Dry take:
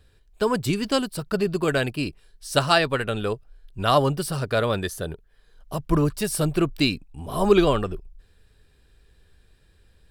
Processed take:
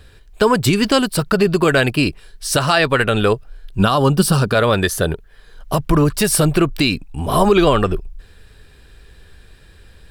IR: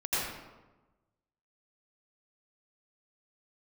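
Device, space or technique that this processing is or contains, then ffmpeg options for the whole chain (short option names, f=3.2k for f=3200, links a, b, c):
mastering chain: -filter_complex "[0:a]equalizer=f=1.7k:t=o:w=2.1:g=3,acompressor=threshold=-24dB:ratio=2,alimiter=level_in=15.5dB:limit=-1dB:release=50:level=0:latency=1,asettb=1/sr,asplit=3[a][b][c];[a]atrim=end=3.794[d];[b]atrim=start=3.79:end=4.55,asetpts=PTS-STARTPTS,afade=t=in:d=0.004:c=qsin,afade=t=out:st=0.756:d=0.004:c=qsin,equalizer=f=200:t=o:w=0.33:g=9,equalizer=f=630:t=o:w=0.33:g=-5,equalizer=f=2k:t=o:w=0.33:g=-11[e];[c]atrim=start=4.546[f];[d][e]acrossfade=d=0.004:c1=hsin:c2=qsin[g];[g][f]acrossfade=d=0.004:c1=qsin:c2=hsin,volume=-3dB"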